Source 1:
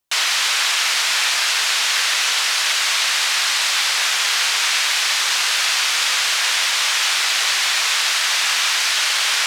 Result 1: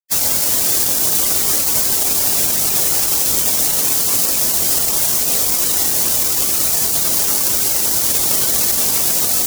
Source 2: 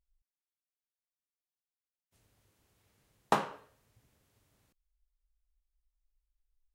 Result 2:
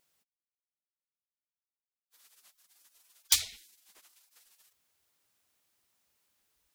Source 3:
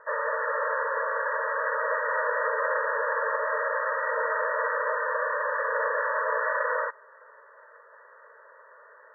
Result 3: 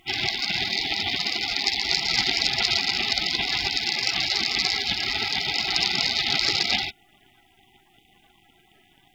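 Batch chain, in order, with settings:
stylus tracing distortion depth 0.18 ms
gate on every frequency bin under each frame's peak −25 dB weak
brickwall limiter −18.5 dBFS
normalise the peak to −3 dBFS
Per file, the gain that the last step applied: +15.5, +19.5, +24.5 decibels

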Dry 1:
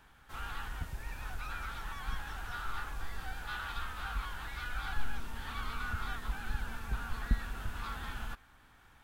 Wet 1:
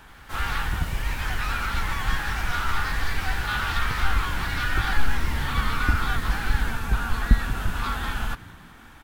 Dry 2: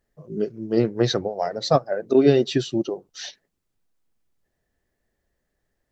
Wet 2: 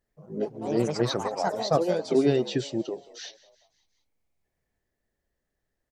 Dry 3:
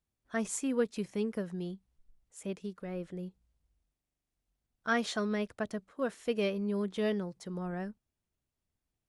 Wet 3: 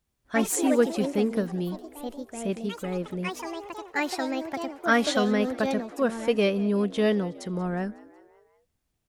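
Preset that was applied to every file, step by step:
echo with shifted repeats 183 ms, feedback 55%, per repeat +69 Hz, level −20.5 dB
delay with pitch and tempo change per echo 85 ms, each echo +4 semitones, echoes 3, each echo −6 dB
loudness normalisation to −27 LKFS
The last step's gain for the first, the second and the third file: +12.5, −5.5, +8.0 decibels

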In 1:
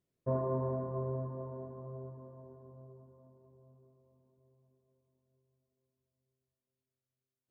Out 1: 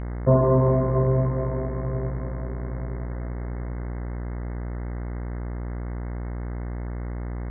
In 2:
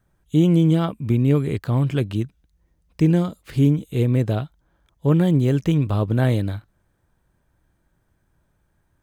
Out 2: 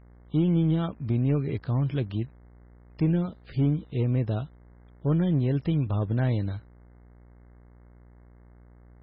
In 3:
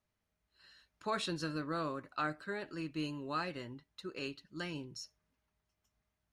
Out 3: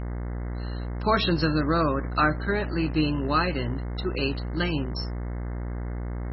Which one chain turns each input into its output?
low-shelf EQ 220 Hz +4 dB
hum with harmonics 60 Hz, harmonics 36, −44 dBFS −7 dB per octave
in parallel at −6.5 dB: hard clipping −14 dBFS
on the sum: MP3 16 kbit/s 22,050 Hz
loudness normalisation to −27 LKFS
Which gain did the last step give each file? +10.5, −11.0, +10.0 decibels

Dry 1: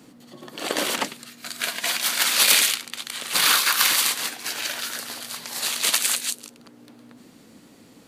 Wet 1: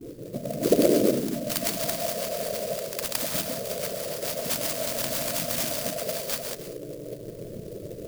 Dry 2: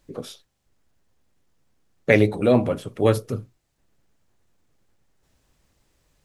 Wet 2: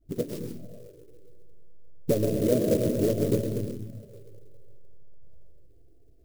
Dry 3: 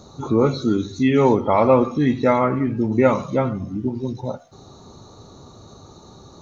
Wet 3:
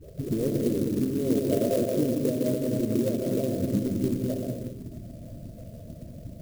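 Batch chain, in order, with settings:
samples in bit-reversed order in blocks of 16 samples
downward compressor 3 to 1, threshold −31 dBFS
low-pass that shuts in the quiet parts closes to 2,700 Hz, open at −29.5 dBFS
all-pass dispersion highs, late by 53 ms, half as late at 660 Hz
brick-wall band-stop 700–4,400 Hz
treble cut that deepens with the level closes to 2,400 Hz, closed at −29 dBFS
comb and all-pass reverb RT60 2 s, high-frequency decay 0.3×, pre-delay 85 ms, DRR 0 dB
harmonic and percussive parts rebalanced harmonic −9 dB
flanger swept by the level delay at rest 2.9 ms, full sweep at −33 dBFS
converter with an unsteady clock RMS 0.052 ms
loudness normalisation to −27 LKFS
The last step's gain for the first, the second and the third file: +21.0, +10.0, +7.5 decibels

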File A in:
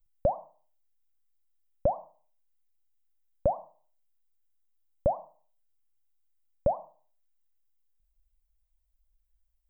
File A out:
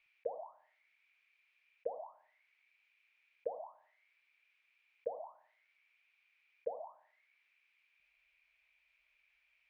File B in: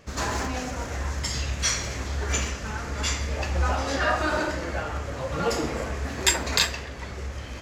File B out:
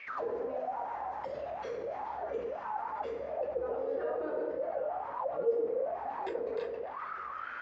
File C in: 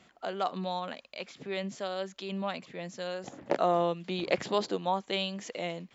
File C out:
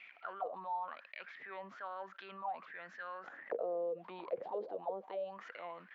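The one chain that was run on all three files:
low-shelf EQ 95 Hz −8 dB
envelope filter 470–2,400 Hz, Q 13, down, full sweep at −25.5 dBFS
high-frequency loss of the air 170 metres
envelope flattener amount 50%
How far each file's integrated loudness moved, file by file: −13.5, −9.0, −10.0 LU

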